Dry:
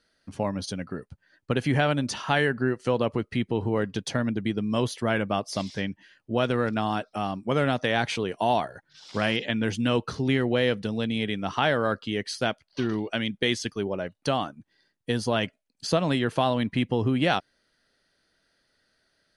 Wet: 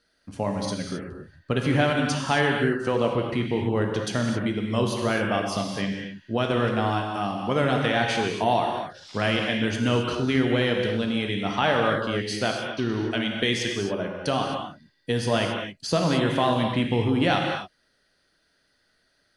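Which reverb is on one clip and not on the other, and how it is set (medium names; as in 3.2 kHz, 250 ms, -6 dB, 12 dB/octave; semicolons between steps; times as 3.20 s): gated-style reverb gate 290 ms flat, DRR 1 dB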